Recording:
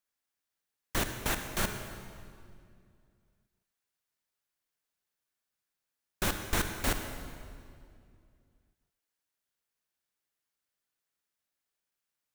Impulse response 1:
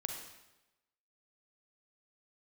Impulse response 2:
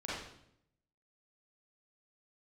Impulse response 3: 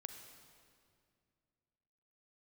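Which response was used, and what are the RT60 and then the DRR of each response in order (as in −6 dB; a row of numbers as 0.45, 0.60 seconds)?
3; 1.0, 0.70, 2.3 seconds; 2.5, −8.5, 6.0 decibels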